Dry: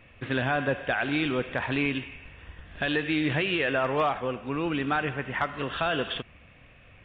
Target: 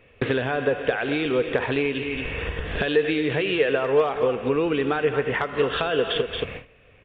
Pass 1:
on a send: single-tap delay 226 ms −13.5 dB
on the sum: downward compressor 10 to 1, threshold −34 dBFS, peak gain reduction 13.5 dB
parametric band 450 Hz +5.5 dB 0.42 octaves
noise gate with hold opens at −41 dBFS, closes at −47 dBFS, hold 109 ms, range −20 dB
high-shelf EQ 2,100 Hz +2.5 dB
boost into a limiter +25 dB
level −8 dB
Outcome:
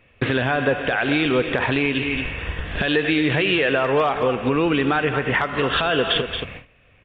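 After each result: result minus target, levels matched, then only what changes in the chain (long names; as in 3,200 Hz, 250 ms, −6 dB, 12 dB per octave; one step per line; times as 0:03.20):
downward compressor: peak gain reduction −7 dB; 500 Hz band −3.5 dB
change: downward compressor 10 to 1, threshold −41.5 dBFS, peak gain reduction 20.5 dB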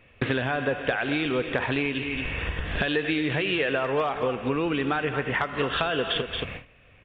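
500 Hz band −3.0 dB
change: parametric band 450 Hz +14.5 dB 0.42 octaves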